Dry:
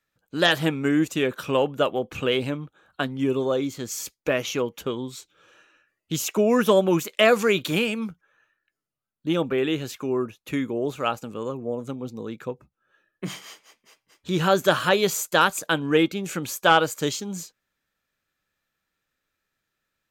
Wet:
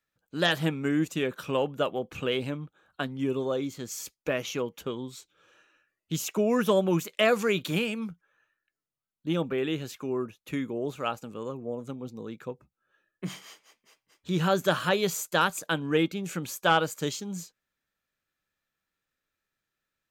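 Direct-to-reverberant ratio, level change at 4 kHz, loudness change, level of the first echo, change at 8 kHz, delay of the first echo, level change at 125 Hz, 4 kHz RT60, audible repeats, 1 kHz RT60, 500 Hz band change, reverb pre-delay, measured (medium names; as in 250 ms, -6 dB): no reverb, -5.5 dB, -5.5 dB, no echo, -5.5 dB, no echo, -2.5 dB, no reverb, no echo, no reverb, -5.5 dB, no reverb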